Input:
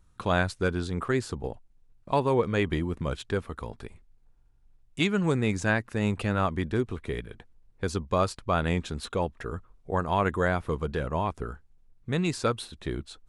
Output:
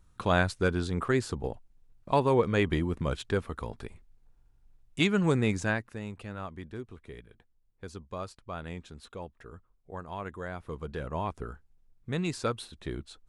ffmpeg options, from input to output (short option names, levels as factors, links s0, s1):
-af "volume=2.82,afade=t=out:st=5.41:d=0.64:silence=0.223872,afade=t=in:st=10.48:d=0.79:silence=0.354813"